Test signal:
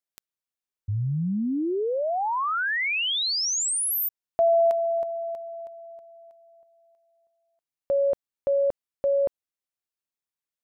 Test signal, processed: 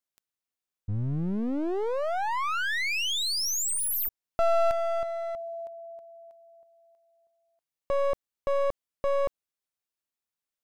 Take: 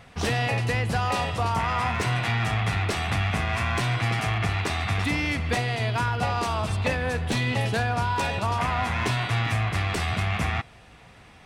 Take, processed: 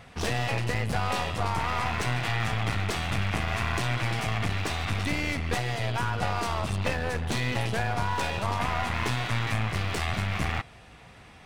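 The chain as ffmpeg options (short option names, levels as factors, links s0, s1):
-af "aeval=exprs='clip(val(0),-1,0.02)':c=same"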